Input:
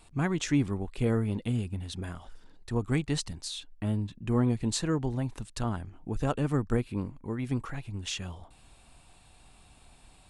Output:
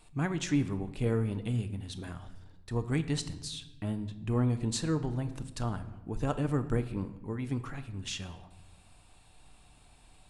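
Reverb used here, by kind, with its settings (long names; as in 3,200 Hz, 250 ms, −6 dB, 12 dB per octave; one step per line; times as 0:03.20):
rectangular room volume 470 cubic metres, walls mixed, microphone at 0.43 metres
level −3 dB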